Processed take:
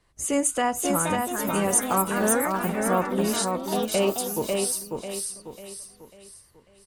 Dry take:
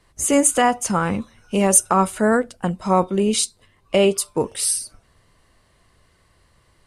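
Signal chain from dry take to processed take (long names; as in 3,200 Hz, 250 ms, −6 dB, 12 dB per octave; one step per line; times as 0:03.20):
repeating echo 545 ms, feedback 40%, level −4 dB
delay with pitch and tempo change per echo 596 ms, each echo +4 semitones, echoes 3, each echo −6 dB
level −7.5 dB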